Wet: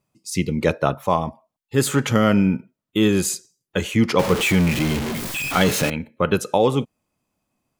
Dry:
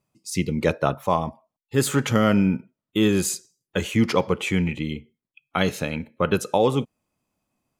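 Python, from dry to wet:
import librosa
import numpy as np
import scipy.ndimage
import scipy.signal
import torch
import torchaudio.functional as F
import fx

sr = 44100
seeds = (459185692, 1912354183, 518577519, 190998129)

y = fx.zero_step(x, sr, step_db=-21.5, at=(4.19, 5.9))
y = F.gain(torch.from_numpy(y), 2.0).numpy()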